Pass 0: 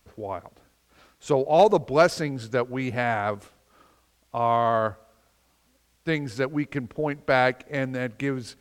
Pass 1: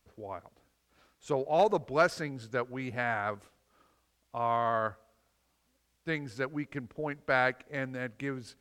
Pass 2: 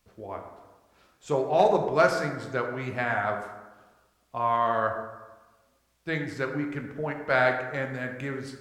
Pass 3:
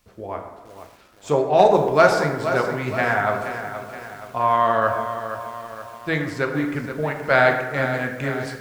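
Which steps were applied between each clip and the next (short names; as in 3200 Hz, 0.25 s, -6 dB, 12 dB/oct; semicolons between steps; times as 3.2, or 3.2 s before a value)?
dynamic EQ 1500 Hz, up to +6 dB, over -37 dBFS, Q 1.3; gain -9 dB
plate-style reverb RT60 1.2 s, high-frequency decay 0.5×, DRR 3 dB; gain +2.5 dB
lo-fi delay 0.473 s, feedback 55%, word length 8-bit, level -10 dB; gain +6.5 dB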